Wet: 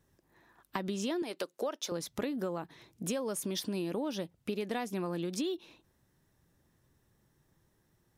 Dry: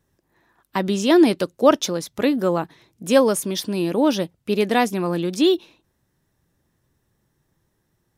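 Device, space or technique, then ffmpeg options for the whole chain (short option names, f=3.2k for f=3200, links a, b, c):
serial compression, peaks first: -filter_complex "[0:a]asettb=1/sr,asplit=3[a][b][c];[a]atrim=end=1.224[d];[b]atrim=start=1.22:end=1.92,asetpts=PTS-STARTPTS,afade=t=in:d=0.004:c=qsin,afade=t=out:st=0.696:d=0.004:c=qsin,highpass=410[e];[c]atrim=start=1.916[f];[d][e]acrossfade=d=0.004:c1=hsin:c2=qsin[g];[g][f]acrossfade=d=0.004:c1=qsin:c2=hsin,acompressor=threshold=-24dB:ratio=6,acompressor=threshold=-34dB:ratio=2,volume=-2dB"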